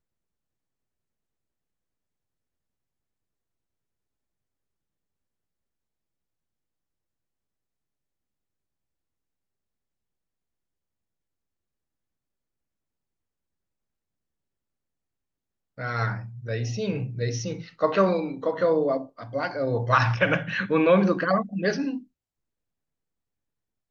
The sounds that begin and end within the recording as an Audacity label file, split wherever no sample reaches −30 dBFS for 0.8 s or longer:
15.800000	21.980000	sound